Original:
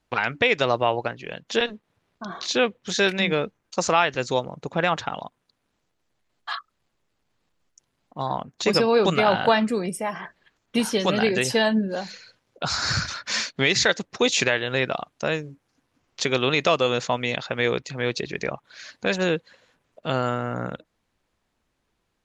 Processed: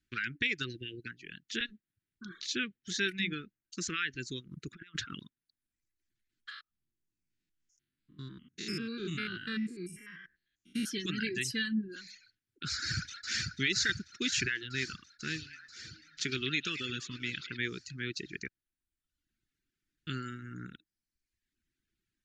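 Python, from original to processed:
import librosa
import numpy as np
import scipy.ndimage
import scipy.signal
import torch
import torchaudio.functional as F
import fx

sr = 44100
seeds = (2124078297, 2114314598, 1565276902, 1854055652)

y = fx.spec_erase(x, sr, start_s=0.67, length_s=0.4, low_hz=720.0, high_hz=1500.0)
y = fx.over_compress(y, sr, threshold_db=-30.0, ratio=-0.5, at=(4.5, 5.26), fade=0.02)
y = fx.spec_steps(y, sr, hold_ms=100, at=(6.49, 10.85), fade=0.02)
y = fx.echo_throw(y, sr, start_s=12.74, length_s=0.77, ms=490, feedback_pct=75, wet_db=-4.5)
y = fx.echo_stepped(y, sr, ms=105, hz=3700.0, octaves=-0.7, feedback_pct=70, wet_db=-4.5, at=(15.24, 17.57), fade=0.02)
y = fx.edit(y, sr, fx.room_tone_fill(start_s=18.48, length_s=1.59), tone=tone)
y = scipy.signal.sosfilt(scipy.signal.ellip(3, 1.0, 60, [350.0, 1500.0], 'bandstop', fs=sr, output='sos'), y)
y = fx.dereverb_blind(y, sr, rt60_s=0.9)
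y = F.gain(torch.from_numpy(y), -8.0).numpy()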